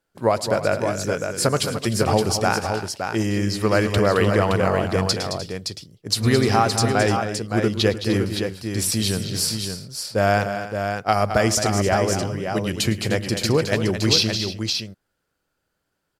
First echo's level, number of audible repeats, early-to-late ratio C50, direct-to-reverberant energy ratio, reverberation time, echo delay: −19.0 dB, 4, no reverb audible, no reverb audible, no reverb audible, 108 ms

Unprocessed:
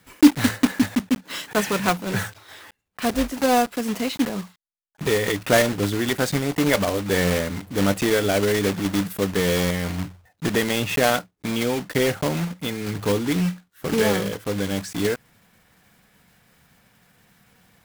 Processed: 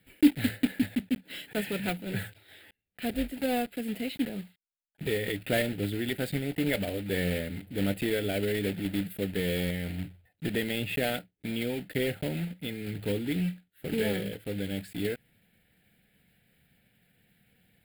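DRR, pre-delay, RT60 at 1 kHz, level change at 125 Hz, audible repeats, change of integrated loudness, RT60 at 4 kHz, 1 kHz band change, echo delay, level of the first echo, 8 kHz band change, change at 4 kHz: no reverb audible, no reverb audible, no reverb audible, −7.0 dB, no echo audible, −9.0 dB, no reverb audible, −15.0 dB, no echo audible, no echo audible, −15.0 dB, −9.0 dB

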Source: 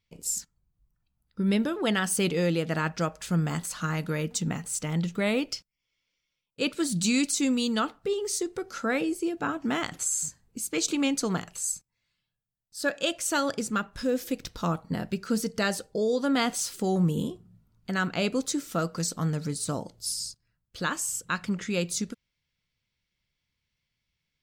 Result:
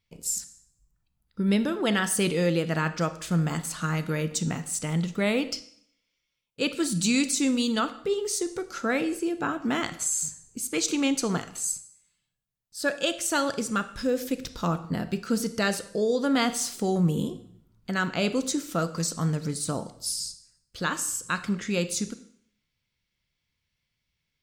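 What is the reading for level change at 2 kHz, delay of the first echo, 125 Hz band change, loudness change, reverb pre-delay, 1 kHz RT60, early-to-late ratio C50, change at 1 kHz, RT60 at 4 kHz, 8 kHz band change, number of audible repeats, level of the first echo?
+1.5 dB, no echo audible, +1.5 dB, +1.5 dB, 27 ms, 0.65 s, 14.0 dB, +1.0 dB, 0.60 s, +1.0 dB, no echo audible, no echo audible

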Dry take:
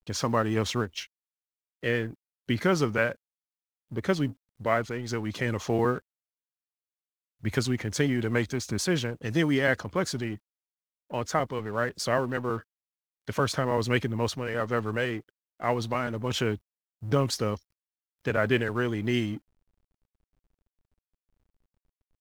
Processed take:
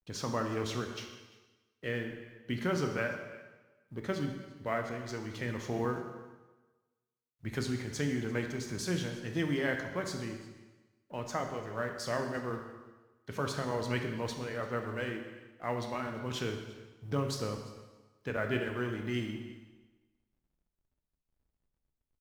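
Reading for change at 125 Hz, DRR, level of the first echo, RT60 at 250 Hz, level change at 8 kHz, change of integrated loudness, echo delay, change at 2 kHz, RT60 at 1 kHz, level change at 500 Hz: −7.0 dB, 3.5 dB, −20.5 dB, 1.2 s, −7.5 dB, −7.5 dB, 343 ms, −7.5 dB, 1.2 s, −7.5 dB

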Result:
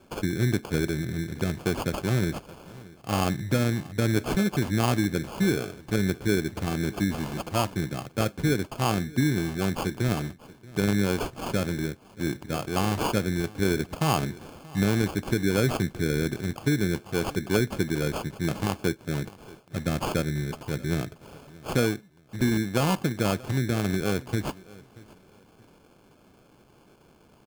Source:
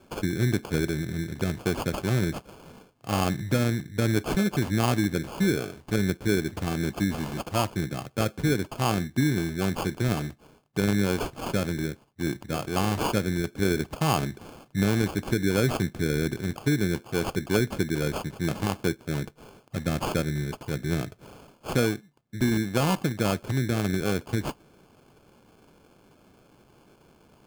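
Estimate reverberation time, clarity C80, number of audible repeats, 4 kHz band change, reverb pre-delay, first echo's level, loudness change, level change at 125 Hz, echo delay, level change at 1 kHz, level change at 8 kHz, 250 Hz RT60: no reverb audible, no reverb audible, 2, 0.0 dB, no reverb audible, −21.5 dB, 0.0 dB, 0.0 dB, 631 ms, 0.0 dB, 0.0 dB, no reverb audible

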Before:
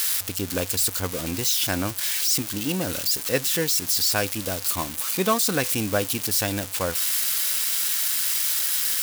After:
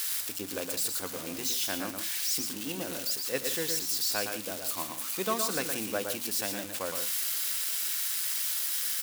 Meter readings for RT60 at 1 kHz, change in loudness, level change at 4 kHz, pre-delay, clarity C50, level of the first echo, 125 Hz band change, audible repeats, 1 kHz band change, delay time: no reverb audible, −7.5 dB, −7.5 dB, no reverb audible, no reverb audible, −6.0 dB, −16.5 dB, 2, −7.5 dB, 115 ms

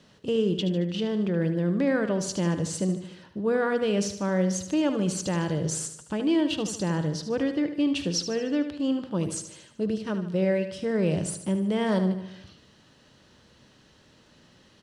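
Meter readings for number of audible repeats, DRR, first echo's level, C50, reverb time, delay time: 5, no reverb audible, −10.0 dB, no reverb audible, no reverb audible, 75 ms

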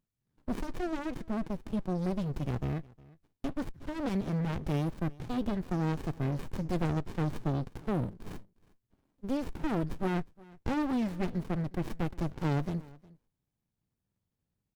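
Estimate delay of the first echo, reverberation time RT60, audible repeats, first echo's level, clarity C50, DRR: 360 ms, no reverb audible, 1, −23.0 dB, no reverb audible, no reverb audible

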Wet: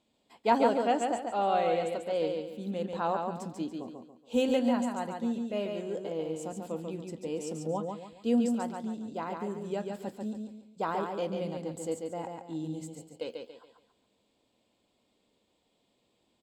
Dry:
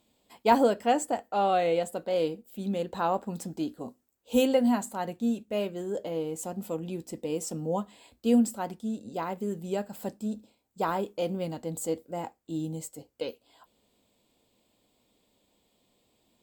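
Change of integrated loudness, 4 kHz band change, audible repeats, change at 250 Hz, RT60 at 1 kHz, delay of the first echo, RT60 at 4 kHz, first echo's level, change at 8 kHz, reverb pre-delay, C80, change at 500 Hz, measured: −2.5 dB, −3.0 dB, 4, −2.5 dB, no reverb audible, 141 ms, no reverb audible, −4.5 dB, −7.0 dB, no reverb audible, no reverb audible, −2.0 dB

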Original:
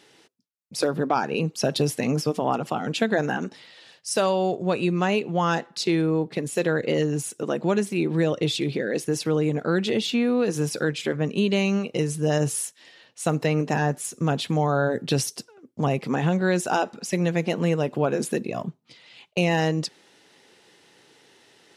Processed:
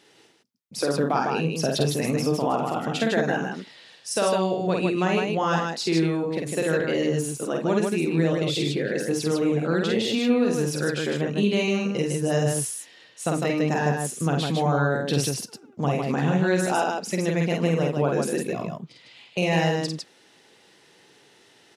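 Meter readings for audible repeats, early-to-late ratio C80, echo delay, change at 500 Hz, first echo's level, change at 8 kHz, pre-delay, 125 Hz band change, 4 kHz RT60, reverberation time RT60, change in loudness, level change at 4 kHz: 3, no reverb audible, 49 ms, +0.5 dB, −3.0 dB, +0.5 dB, no reverb audible, 0.0 dB, no reverb audible, no reverb audible, +0.5 dB, +0.5 dB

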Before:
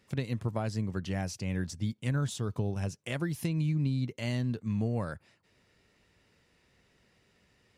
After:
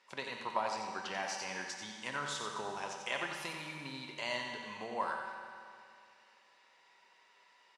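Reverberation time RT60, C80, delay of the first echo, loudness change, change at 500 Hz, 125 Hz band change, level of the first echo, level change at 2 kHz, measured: 2.5 s, 2.5 dB, 90 ms, −6.0 dB, −3.5 dB, −25.0 dB, −6.5 dB, +4.0 dB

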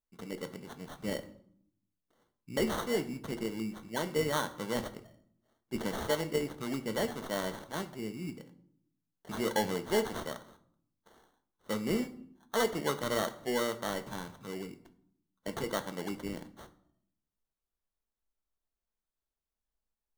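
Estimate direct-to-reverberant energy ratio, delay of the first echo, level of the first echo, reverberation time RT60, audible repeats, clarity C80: 8.5 dB, no echo audible, no echo audible, 0.65 s, no echo audible, 18.5 dB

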